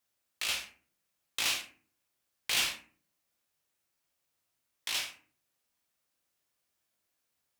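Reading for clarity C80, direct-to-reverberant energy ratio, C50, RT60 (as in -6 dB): 14.5 dB, 1.5 dB, 10.0 dB, 0.45 s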